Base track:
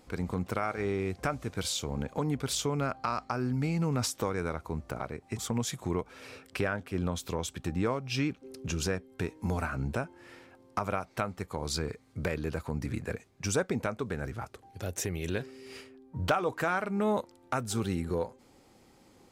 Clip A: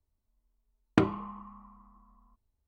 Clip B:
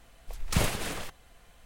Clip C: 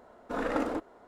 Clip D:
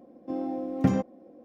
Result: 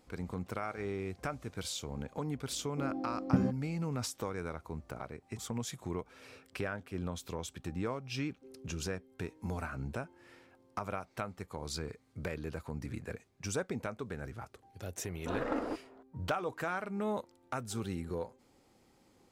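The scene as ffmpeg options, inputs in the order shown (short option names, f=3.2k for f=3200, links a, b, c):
-filter_complex "[0:a]volume=-6.5dB[a];[4:a]lowshelf=f=400:g=9.5[b];[3:a]highshelf=f=5.1k:g=-11.5[c];[b]atrim=end=1.44,asetpts=PTS-STARTPTS,volume=-12.5dB,afade=t=in:d=0.004:c=hsin,afade=t=out:st=1.436:d=0.004:c=hsin,adelay=2490[d];[c]atrim=end=1.07,asetpts=PTS-STARTPTS,volume=-4.5dB,afade=t=in:d=0.004:c=hsin,afade=t=out:st=1.066:d=0.004:c=hsin,adelay=14960[e];[a][d][e]amix=inputs=3:normalize=0"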